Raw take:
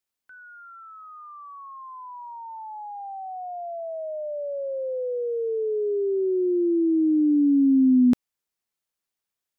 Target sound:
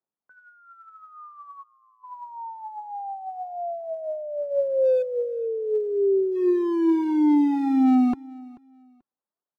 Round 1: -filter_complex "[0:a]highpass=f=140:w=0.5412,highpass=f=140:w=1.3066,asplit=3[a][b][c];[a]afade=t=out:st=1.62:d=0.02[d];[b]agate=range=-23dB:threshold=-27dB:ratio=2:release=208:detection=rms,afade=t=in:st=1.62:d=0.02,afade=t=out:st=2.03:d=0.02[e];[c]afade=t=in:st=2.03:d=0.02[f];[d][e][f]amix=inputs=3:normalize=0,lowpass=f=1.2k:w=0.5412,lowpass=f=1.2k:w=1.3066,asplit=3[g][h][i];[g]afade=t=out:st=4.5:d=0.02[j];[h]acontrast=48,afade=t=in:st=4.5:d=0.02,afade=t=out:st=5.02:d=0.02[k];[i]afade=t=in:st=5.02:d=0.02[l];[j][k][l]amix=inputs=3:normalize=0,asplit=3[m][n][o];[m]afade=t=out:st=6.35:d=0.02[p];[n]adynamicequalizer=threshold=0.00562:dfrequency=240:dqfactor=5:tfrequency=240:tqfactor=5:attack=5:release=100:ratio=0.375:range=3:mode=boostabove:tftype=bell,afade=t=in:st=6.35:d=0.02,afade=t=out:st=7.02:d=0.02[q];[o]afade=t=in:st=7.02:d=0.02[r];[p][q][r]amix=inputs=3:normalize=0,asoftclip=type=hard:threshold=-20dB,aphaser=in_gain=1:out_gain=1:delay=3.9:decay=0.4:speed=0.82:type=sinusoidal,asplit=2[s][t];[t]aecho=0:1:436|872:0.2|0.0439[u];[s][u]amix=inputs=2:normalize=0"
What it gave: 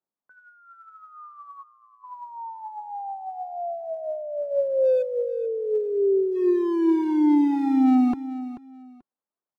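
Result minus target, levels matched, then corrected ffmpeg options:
echo-to-direct +8.5 dB
-filter_complex "[0:a]highpass=f=140:w=0.5412,highpass=f=140:w=1.3066,asplit=3[a][b][c];[a]afade=t=out:st=1.62:d=0.02[d];[b]agate=range=-23dB:threshold=-27dB:ratio=2:release=208:detection=rms,afade=t=in:st=1.62:d=0.02,afade=t=out:st=2.03:d=0.02[e];[c]afade=t=in:st=2.03:d=0.02[f];[d][e][f]amix=inputs=3:normalize=0,lowpass=f=1.2k:w=0.5412,lowpass=f=1.2k:w=1.3066,asplit=3[g][h][i];[g]afade=t=out:st=4.5:d=0.02[j];[h]acontrast=48,afade=t=in:st=4.5:d=0.02,afade=t=out:st=5.02:d=0.02[k];[i]afade=t=in:st=5.02:d=0.02[l];[j][k][l]amix=inputs=3:normalize=0,asplit=3[m][n][o];[m]afade=t=out:st=6.35:d=0.02[p];[n]adynamicequalizer=threshold=0.00562:dfrequency=240:dqfactor=5:tfrequency=240:tqfactor=5:attack=5:release=100:ratio=0.375:range=3:mode=boostabove:tftype=bell,afade=t=in:st=6.35:d=0.02,afade=t=out:st=7.02:d=0.02[q];[o]afade=t=in:st=7.02:d=0.02[r];[p][q][r]amix=inputs=3:normalize=0,asoftclip=type=hard:threshold=-20dB,aphaser=in_gain=1:out_gain=1:delay=3.9:decay=0.4:speed=0.82:type=sinusoidal,asplit=2[s][t];[t]aecho=0:1:436|872:0.075|0.0165[u];[s][u]amix=inputs=2:normalize=0"

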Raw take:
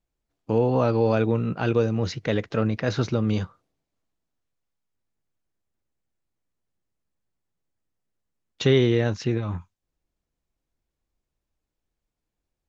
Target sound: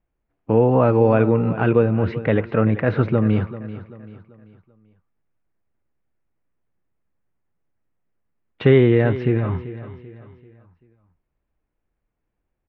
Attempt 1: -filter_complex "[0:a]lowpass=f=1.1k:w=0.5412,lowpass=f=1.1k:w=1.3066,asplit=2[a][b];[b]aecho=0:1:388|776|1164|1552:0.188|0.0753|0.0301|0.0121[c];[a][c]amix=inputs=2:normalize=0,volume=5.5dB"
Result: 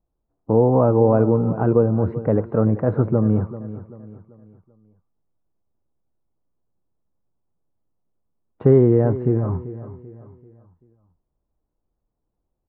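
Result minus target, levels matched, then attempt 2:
2000 Hz band -14.0 dB
-filter_complex "[0:a]lowpass=f=2.4k:w=0.5412,lowpass=f=2.4k:w=1.3066,asplit=2[a][b];[b]aecho=0:1:388|776|1164|1552:0.188|0.0753|0.0301|0.0121[c];[a][c]amix=inputs=2:normalize=0,volume=5.5dB"

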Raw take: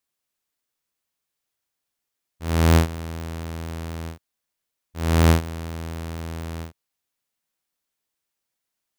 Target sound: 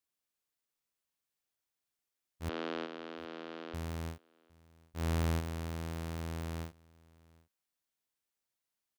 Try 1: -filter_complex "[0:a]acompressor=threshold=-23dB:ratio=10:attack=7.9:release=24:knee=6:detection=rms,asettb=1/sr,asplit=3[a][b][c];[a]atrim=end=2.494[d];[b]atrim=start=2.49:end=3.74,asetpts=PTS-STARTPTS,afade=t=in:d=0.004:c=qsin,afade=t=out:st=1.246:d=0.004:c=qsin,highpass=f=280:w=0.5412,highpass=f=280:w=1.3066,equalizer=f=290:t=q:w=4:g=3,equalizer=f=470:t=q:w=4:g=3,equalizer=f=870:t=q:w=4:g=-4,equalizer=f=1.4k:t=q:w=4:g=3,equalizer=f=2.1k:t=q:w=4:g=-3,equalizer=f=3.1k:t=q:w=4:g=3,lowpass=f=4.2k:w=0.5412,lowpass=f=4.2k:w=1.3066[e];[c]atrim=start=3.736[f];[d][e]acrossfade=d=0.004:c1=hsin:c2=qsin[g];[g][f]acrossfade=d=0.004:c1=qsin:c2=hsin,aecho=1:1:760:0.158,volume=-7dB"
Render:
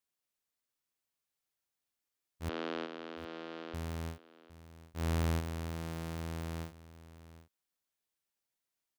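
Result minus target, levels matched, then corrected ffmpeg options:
echo-to-direct +9 dB
-filter_complex "[0:a]acompressor=threshold=-23dB:ratio=10:attack=7.9:release=24:knee=6:detection=rms,asettb=1/sr,asplit=3[a][b][c];[a]atrim=end=2.494[d];[b]atrim=start=2.49:end=3.74,asetpts=PTS-STARTPTS,afade=t=in:d=0.004:c=qsin,afade=t=out:st=1.246:d=0.004:c=qsin,highpass=f=280:w=0.5412,highpass=f=280:w=1.3066,equalizer=f=290:t=q:w=4:g=3,equalizer=f=470:t=q:w=4:g=3,equalizer=f=870:t=q:w=4:g=-4,equalizer=f=1.4k:t=q:w=4:g=3,equalizer=f=2.1k:t=q:w=4:g=-3,equalizer=f=3.1k:t=q:w=4:g=3,lowpass=f=4.2k:w=0.5412,lowpass=f=4.2k:w=1.3066[e];[c]atrim=start=3.736[f];[d][e]acrossfade=d=0.004:c1=hsin:c2=qsin[g];[g][f]acrossfade=d=0.004:c1=qsin:c2=hsin,aecho=1:1:760:0.0562,volume=-7dB"

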